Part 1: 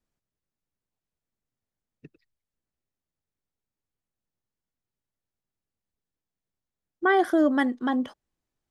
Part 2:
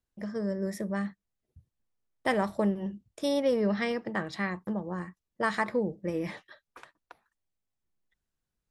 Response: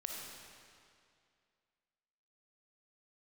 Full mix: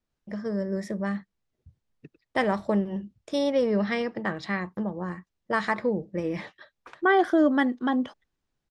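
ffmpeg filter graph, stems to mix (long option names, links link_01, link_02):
-filter_complex "[0:a]volume=0.5dB[link_01];[1:a]adelay=100,volume=2.5dB[link_02];[link_01][link_02]amix=inputs=2:normalize=0,lowpass=6200"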